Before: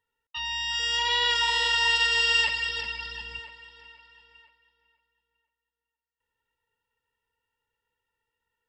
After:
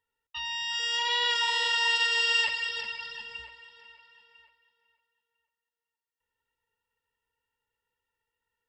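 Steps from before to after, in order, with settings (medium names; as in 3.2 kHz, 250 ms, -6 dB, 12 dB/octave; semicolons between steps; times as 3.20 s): hum notches 60/120/180/240/300/360 Hz; trim -2.5 dB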